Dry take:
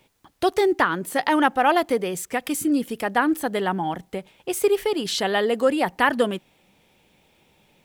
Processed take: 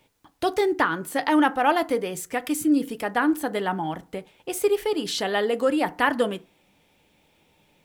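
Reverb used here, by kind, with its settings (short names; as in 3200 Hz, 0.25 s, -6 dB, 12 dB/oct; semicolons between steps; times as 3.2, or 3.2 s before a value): FDN reverb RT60 0.34 s, low-frequency decay 1.1×, high-frequency decay 0.5×, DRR 11.5 dB; gain -2.5 dB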